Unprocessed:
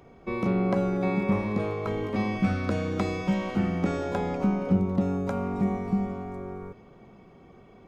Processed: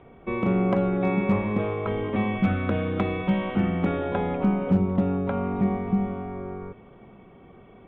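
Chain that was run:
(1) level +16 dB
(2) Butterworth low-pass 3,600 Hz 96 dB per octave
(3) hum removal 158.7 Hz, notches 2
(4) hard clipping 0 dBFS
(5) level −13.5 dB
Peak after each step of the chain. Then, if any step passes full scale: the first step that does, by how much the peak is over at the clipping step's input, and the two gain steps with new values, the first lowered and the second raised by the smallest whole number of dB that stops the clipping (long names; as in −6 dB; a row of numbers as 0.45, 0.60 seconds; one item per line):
+3.5, +3.5, +3.5, 0.0, −13.5 dBFS
step 1, 3.5 dB
step 1 +12 dB, step 5 −9.5 dB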